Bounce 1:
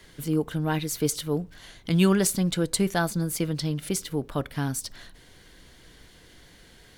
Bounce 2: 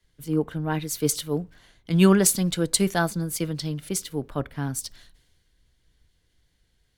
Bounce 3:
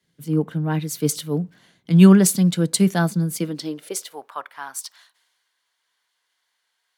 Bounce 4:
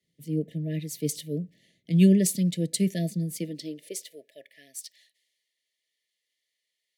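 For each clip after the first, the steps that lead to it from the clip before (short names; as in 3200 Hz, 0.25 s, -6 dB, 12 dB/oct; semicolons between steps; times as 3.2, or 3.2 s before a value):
three-band expander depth 70%
high-pass sweep 170 Hz -> 1000 Hz, 3.32–4.33
brick-wall FIR band-stop 680–1700 Hz; gain -7.5 dB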